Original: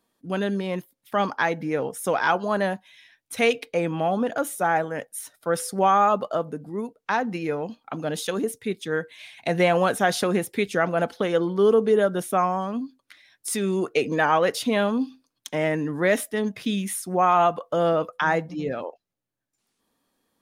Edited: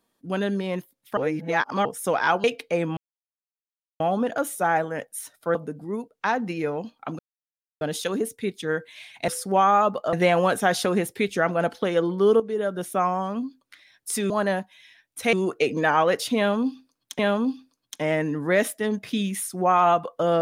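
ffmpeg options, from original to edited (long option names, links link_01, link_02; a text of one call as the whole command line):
ffmpeg -i in.wav -filter_complex "[0:a]asplit=13[link_01][link_02][link_03][link_04][link_05][link_06][link_07][link_08][link_09][link_10][link_11][link_12][link_13];[link_01]atrim=end=1.172[link_14];[link_02]atrim=start=1.168:end=1.852,asetpts=PTS-STARTPTS,areverse[link_15];[link_03]atrim=start=1.848:end=2.442[link_16];[link_04]atrim=start=3.468:end=4,asetpts=PTS-STARTPTS,afade=type=out:start_time=0.528:duration=0.004:curve=hsin,apad=pad_dur=1.03[link_17];[link_05]atrim=start=4:end=5.552,asetpts=PTS-STARTPTS,afade=type=in:duration=0.004:curve=hsin[link_18];[link_06]atrim=start=6.398:end=8.04,asetpts=PTS-STARTPTS,afade=type=out:start_time=1.638:duration=0.004:curve=hsin,apad=pad_dur=0.62[link_19];[link_07]atrim=start=8.04:end=9.512,asetpts=PTS-STARTPTS,afade=type=in:duration=0.004:curve=hsin[link_20];[link_08]atrim=start=5.548:end=6.402[link_21];[link_09]atrim=start=9.508:end=11.78,asetpts=PTS-STARTPTS,afade=type=out:start_time=2.268:duration=0.004:curve=hsin:silence=0.237137[link_22];[link_10]atrim=start=11.78:end=13.682,asetpts=PTS-STARTPTS,afade=type=in:duration=1:curve=qsin:silence=0.237137[link_23];[link_11]atrim=start=2.438:end=3.472[link_24];[link_12]atrim=start=13.678:end=15.542[link_25];[link_13]atrim=start=14.718[link_26];[link_14][link_15]acrossfade=duration=0.004:curve1=hsin:curve2=hsin[link_27];[link_27][link_16]acrossfade=duration=0.004:curve1=hsin:curve2=hsin[link_28];[link_17][link_18]concat=n=2:v=0:a=1[link_29];[link_28][link_29]acrossfade=duration=0.004:curve1=hsin:curve2=hsin[link_30];[link_19][link_20]concat=n=2:v=0:a=1[link_31];[link_30][link_31]acrossfade=duration=0.004:curve1=hsin:curve2=hsin[link_32];[link_32][link_21]acrossfade=duration=0.004:curve1=hsin:curve2=hsin[link_33];[link_22][link_23]concat=n=2:v=0:a=1[link_34];[link_33][link_34]acrossfade=duration=0.004:curve1=hsin:curve2=hsin[link_35];[link_35][link_24]acrossfade=duration=0.004:curve1=hsin:curve2=hsin[link_36];[link_36][link_25]acrossfade=duration=0.004:curve1=hsin:curve2=hsin[link_37];[link_37][link_26]acrossfade=duration=0.004:curve1=hsin:curve2=hsin" out.wav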